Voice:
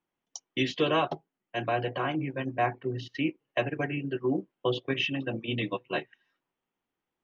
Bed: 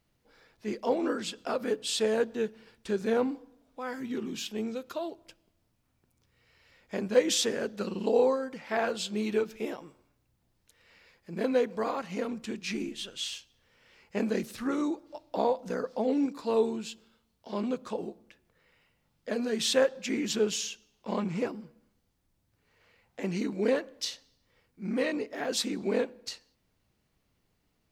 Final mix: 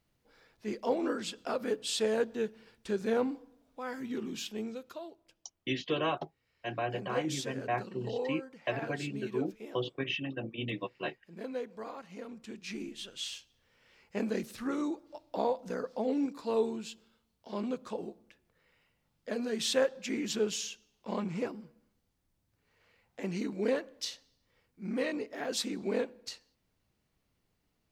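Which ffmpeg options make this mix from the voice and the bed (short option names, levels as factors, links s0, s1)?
-filter_complex "[0:a]adelay=5100,volume=0.531[s0];[1:a]volume=1.88,afade=t=out:st=4.41:d=0.75:silence=0.354813,afade=t=in:st=12.24:d=0.99:silence=0.398107[s1];[s0][s1]amix=inputs=2:normalize=0"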